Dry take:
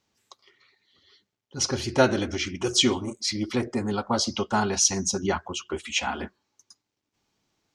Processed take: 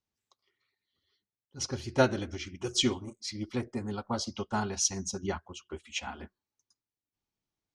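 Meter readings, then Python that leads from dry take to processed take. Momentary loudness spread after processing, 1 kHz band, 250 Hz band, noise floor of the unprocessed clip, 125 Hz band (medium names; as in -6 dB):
13 LU, -7.5 dB, -7.0 dB, -83 dBFS, -4.5 dB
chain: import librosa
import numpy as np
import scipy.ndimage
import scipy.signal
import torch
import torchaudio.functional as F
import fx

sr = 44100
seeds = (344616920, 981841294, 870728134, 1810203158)

y = fx.low_shelf(x, sr, hz=96.0, db=11.0)
y = fx.upward_expand(y, sr, threshold_db=-41.0, expansion=1.5)
y = F.gain(torch.from_numpy(y), -4.5).numpy()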